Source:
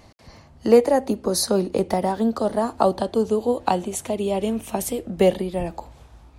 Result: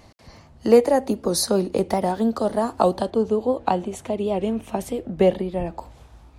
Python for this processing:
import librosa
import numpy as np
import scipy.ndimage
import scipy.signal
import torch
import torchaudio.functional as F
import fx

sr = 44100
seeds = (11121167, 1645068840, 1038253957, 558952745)

y = fx.lowpass(x, sr, hz=2500.0, slope=6, at=(3.1, 5.79))
y = fx.record_warp(y, sr, rpm=78.0, depth_cents=100.0)